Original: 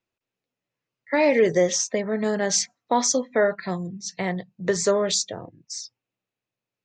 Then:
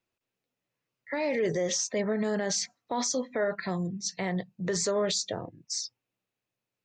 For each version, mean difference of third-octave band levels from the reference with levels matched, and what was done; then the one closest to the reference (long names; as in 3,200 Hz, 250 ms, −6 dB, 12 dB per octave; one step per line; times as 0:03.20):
2.5 dB: dynamic equaliser 4,400 Hz, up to +4 dB, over −42 dBFS, Q 3.2
brickwall limiter −20.5 dBFS, peak gain reduction 11.5 dB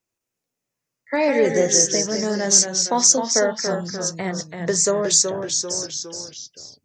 7.5 dB: delay with pitch and tempo change per echo 85 ms, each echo −1 semitone, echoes 3, each echo −6 dB
high shelf with overshoot 4,900 Hz +8 dB, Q 1.5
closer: first